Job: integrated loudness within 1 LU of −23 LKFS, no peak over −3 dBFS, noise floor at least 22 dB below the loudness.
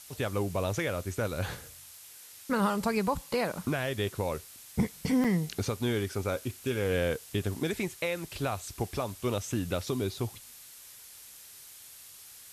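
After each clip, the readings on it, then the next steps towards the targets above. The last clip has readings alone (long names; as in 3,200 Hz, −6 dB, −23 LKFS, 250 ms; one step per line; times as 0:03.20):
number of dropouts 1; longest dropout 5.0 ms; background noise floor −51 dBFS; target noise floor −54 dBFS; integrated loudness −32.0 LKFS; sample peak −15.5 dBFS; target loudness −23.0 LKFS
→ repair the gap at 0:05.24, 5 ms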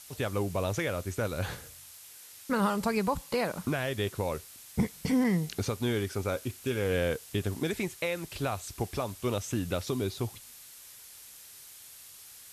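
number of dropouts 0; background noise floor −51 dBFS; target noise floor −54 dBFS
→ noise reduction from a noise print 6 dB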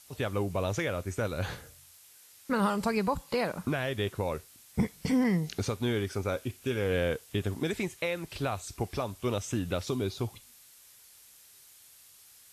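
background noise floor −56 dBFS; integrated loudness −32.0 LKFS; sample peak −15.5 dBFS; target loudness −23.0 LKFS
→ level +9 dB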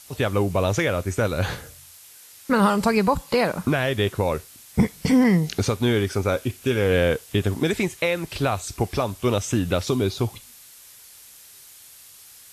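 integrated loudness −23.0 LKFS; sample peak −6.5 dBFS; background noise floor −47 dBFS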